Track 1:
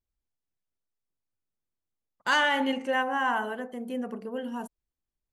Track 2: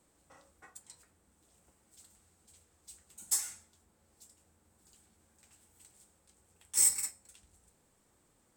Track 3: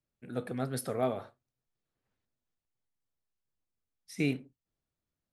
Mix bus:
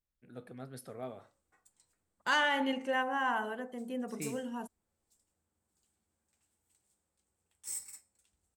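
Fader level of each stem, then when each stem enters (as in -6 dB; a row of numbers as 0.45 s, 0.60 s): -5.0 dB, -14.5 dB, -12.0 dB; 0.00 s, 0.90 s, 0.00 s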